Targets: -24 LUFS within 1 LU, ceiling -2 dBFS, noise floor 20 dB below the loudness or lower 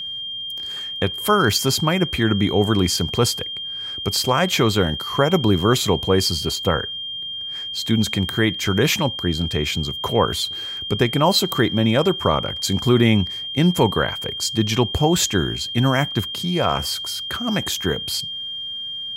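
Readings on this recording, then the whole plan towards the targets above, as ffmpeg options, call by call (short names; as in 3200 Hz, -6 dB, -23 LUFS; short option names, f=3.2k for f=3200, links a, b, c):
steady tone 3200 Hz; tone level -27 dBFS; loudness -20.0 LUFS; peak -4.0 dBFS; loudness target -24.0 LUFS
-> -af "bandreject=f=3.2k:w=30"
-af "volume=-4dB"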